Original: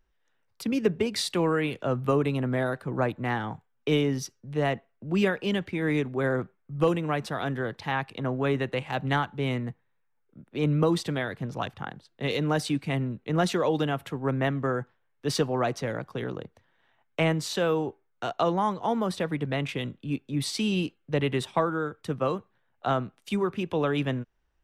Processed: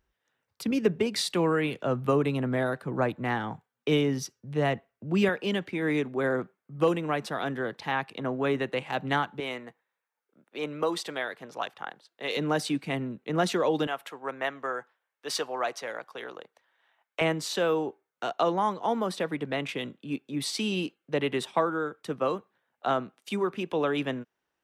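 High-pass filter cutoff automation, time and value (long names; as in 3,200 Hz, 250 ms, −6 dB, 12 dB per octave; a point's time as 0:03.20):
49 Hz
from 0:00.71 120 Hz
from 0:04.36 50 Hz
from 0:05.29 190 Hz
from 0:09.40 480 Hz
from 0:12.37 200 Hz
from 0:13.87 620 Hz
from 0:17.21 230 Hz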